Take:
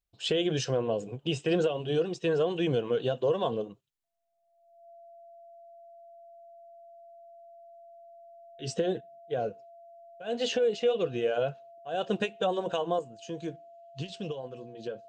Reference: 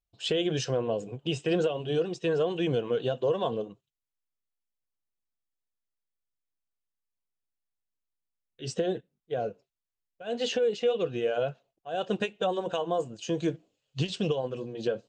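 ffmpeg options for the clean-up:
-af "bandreject=f=680:w=30,asetnsamples=n=441:p=0,asendcmd='12.99 volume volume 8dB',volume=1"

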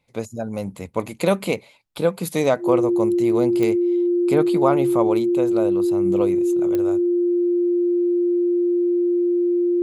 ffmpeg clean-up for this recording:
-af "adeclick=t=4,bandreject=f=350:w=30"

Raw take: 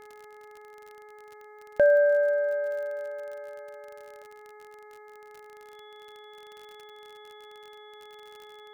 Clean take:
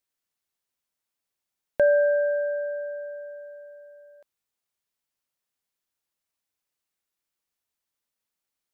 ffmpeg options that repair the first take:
-af "adeclick=t=4,bandreject=f=421.9:t=h:w=4,bandreject=f=843.8:t=h:w=4,bandreject=f=1265.7:t=h:w=4,bandreject=f=1687.6:t=h:w=4,bandreject=f=2109.5:t=h:w=4,bandreject=f=3400:w=30"

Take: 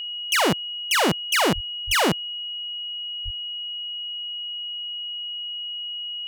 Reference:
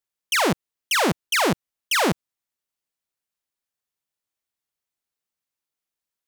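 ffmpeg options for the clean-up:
-filter_complex "[0:a]bandreject=f=2900:w=30,asplit=3[s0][s1][s2];[s0]afade=t=out:st=1.54:d=0.02[s3];[s1]highpass=f=140:w=0.5412,highpass=f=140:w=1.3066,afade=t=in:st=1.54:d=0.02,afade=t=out:st=1.66:d=0.02[s4];[s2]afade=t=in:st=1.66:d=0.02[s5];[s3][s4][s5]amix=inputs=3:normalize=0,asplit=3[s6][s7][s8];[s6]afade=t=out:st=1.86:d=0.02[s9];[s7]highpass=f=140:w=0.5412,highpass=f=140:w=1.3066,afade=t=in:st=1.86:d=0.02,afade=t=out:st=1.98:d=0.02[s10];[s8]afade=t=in:st=1.98:d=0.02[s11];[s9][s10][s11]amix=inputs=3:normalize=0,asplit=3[s12][s13][s14];[s12]afade=t=out:st=3.24:d=0.02[s15];[s13]highpass=f=140:w=0.5412,highpass=f=140:w=1.3066,afade=t=in:st=3.24:d=0.02,afade=t=out:st=3.36:d=0.02[s16];[s14]afade=t=in:st=3.36:d=0.02[s17];[s15][s16][s17]amix=inputs=3:normalize=0"

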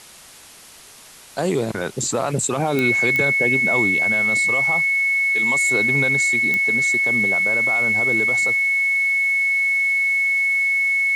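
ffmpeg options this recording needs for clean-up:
-af "adeclick=t=4,bandreject=f=2200:w=30,afwtdn=0.0079"

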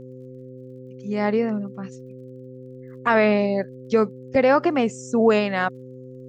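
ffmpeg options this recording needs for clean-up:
-af "adeclick=t=4,bandreject=f=128.4:t=h:w=4,bandreject=f=256.8:t=h:w=4,bandreject=f=385.2:t=h:w=4,bandreject=f=513.6:t=h:w=4"

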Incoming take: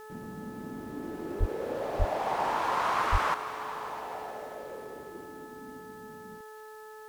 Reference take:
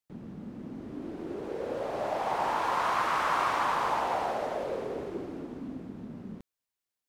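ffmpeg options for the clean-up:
-filter_complex "[0:a]bandreject=f=432.2:t=h:w=4,bandreject=f=864.4:t=h:w=4,bandreject=f=1296.6:t=h:w=4,bandreject=f=1728.8:t=h:w=4,asplit=3[s0][s1][s2];[s0]afade=t=out:st=1.39:d=0.02[s3];[s1]highpass=f=140:w=0.5412,highpass=f=140:w=1.3066,afade=t=in:st=1.39:d=0.02,afade=t=out:st=1.51:d=0.02[s4];[s2]afade=t=in:st=1.51:d=0.02[s5];[s3][s4][s5]amix=inputs=3:normalize=0,asplit=3[s6][s7][s8];[s6]afade=t=out:st=1.98:d=0.02[s9];[s7]highpass=f=140:w=0.5412,highpass=f=140:w=1.3066,afade=t=in:st=1.98:d=0.02,afade=t=out:st=2.1:d=0.02[s10];[s8]afade=t=in:st=2.1:d=0.02[s11];[s9][s10][s11]amix=inputs=3:normalize=0,asplit=3[s12][s13][s14];[s12]afade=t=out:st=3.11:d=0.02[s15];[s13]highpass=f=140:w=0.5412,highpass=f=140:w=1.3066,afade=t=in:st=3.11:d=0.02,afade=t=out:st=3.23:d=0.02[s16];[s14]afade=t=in:st=3.23:d=0.02[s17];[s15][s16][s17]amix=inputs=3:normalize=0,agate=range=0.0891:threshold=0.0112,asetnsamples=n=441:p=0,asendcmd='3.34 volume volume 9.5dB',volume=1"

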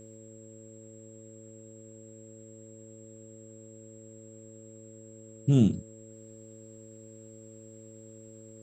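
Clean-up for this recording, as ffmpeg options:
-af "bandreject=f=109.7:t=h:w=4,bandreject=f=219.4:t=h:w=4,bandreject=f=329.1:t=h:w=4,bandreject=f=438.8:t=h:w=4,bandreject=f=548.5:t=h:w=4,bandreject=f=7600:w=30,agate=range=0.0891:threshold=0.00794"

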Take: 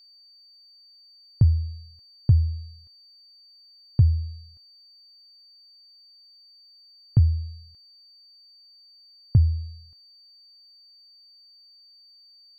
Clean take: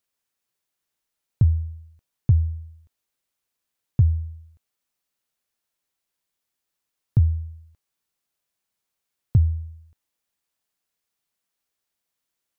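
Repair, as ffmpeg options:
-af "bandreject=f=4600:w=30"

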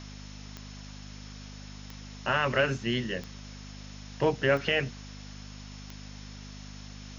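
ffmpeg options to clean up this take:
-af "adeclick=t=4,bandreject=f=50.7:t=h:w=4,bandreject=f=101.4:t=h:w=4,bandreject=f=152.1:t=h:w=4,bandreject=f=202.8:t=h:w=4,bandreject=f=253.5:t=h:w=4,bandreject=f=5300:w=30,afftdn=nr=30:nf=-44"

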